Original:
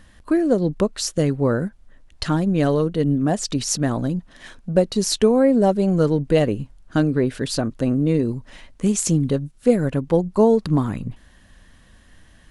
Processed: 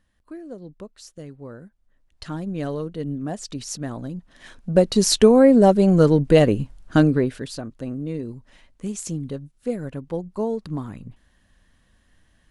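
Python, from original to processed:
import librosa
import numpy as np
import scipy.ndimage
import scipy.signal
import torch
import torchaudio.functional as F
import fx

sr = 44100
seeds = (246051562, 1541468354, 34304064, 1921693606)

y = fx.gain(x, sr, db=fx.line((1.65, -19.0), (2.45, -9.0), (4.1, -9.0), (4.92, 3.0), (7.07, 3.0), (7.55, -10.0)))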